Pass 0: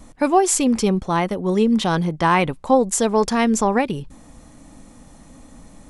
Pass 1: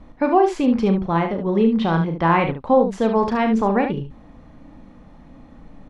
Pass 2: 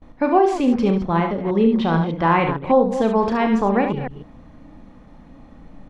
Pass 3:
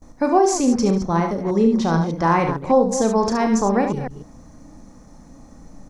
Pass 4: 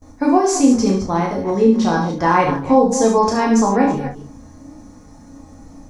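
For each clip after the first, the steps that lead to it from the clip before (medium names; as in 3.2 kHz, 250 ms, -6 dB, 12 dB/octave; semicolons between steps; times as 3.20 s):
distance through air 320 m; on a send: early reflections 36 ms -8.5 dB, 72 ms -8 dB
chunks repeated in reverse 151 ms, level -10 dB; gate with hold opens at -36 dBFS
resonant high shelf 4.4 kHz +12.5 dB, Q 3
reverberation, pre-delay 5 ms, DRR -1 dB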